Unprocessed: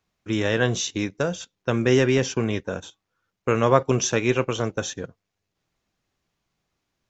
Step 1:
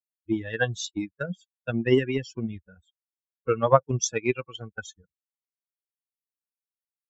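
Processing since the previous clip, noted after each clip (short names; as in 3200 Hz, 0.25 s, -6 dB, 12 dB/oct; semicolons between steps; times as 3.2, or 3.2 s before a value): per-bin expansion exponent 3; transient shaper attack +6 dB, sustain -2 dB; gain -1 dB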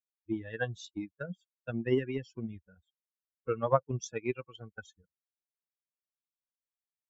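high shelf 3800 Hz -11.5 dB; gain -7.5 dB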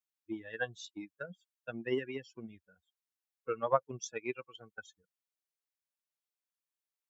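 HPF 530 Hz 6 dB/oct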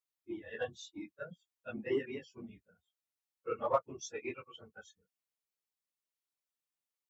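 phase scrambler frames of 50 ms; in parallel at -11 dB: hard clip -25 dBFS, distortion -10 dB; on the sum: notch 1600 Hz, Q 15; gain -4 dB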